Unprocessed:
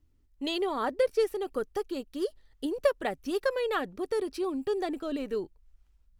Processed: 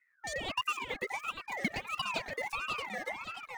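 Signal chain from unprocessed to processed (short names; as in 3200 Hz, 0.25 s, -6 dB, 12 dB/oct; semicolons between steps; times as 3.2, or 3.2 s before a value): speed mistake 45 rpm record played at 78 rpm; echoes that change speed 0.417 s, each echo -1 st, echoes 3, each echo -6 dB; ring modulator with a swept carrier 1600 Hz, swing 25%, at 1.5 Hz; gain -4.5 dB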